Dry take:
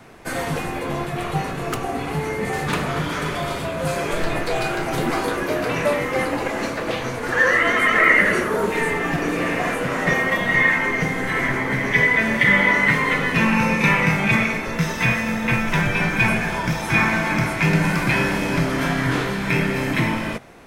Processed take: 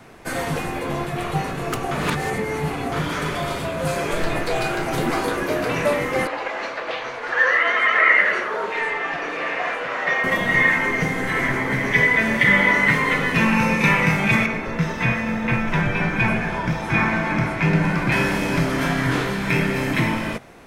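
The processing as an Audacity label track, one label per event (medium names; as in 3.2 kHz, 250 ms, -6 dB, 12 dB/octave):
1.910000	2.920000	reverse
6.270000	10.240000	three-band isolator lows -19 dB, under 470 Hz, highs -23 dB, over 5.2 kHz
14.460000	18.120000	low-pass 2.3 kHz 6 dB/octave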